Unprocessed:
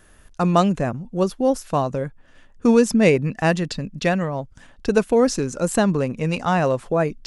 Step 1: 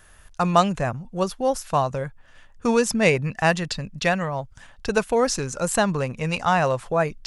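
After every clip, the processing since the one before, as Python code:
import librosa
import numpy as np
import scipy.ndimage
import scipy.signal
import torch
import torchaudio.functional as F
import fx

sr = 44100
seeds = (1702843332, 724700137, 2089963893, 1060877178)

y = fx.curve_eq(x, sr, hz=(120.0, 280.0, 840.0), db=(0, -9, 2))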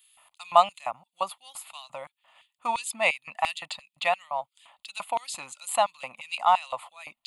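y = fx.filter_lfo_highpass(x, sr, shape='square', hz=2.9, low_hz=720.0, high_hz=3800.0, q=1.3)
y = fx.fixed_phaser(y, sr, hz=1600.0, stages=6)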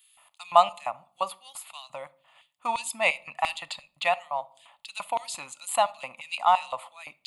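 y = fx.room_shoebox(x, sr, seeds[0], volume_m3=620.0, walls='furnished', distance_m=0.3)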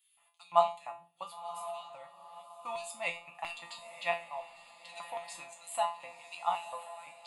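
y = fx.comb_fb(x, sr, f0_hz=170.0, decay_s=0.32, harmonics='all', damping=0.0, mix_pct=90)
y = fx.echo_diffused(y, sr, ms=1034, feedback_pct=41, wet_db=-12.0)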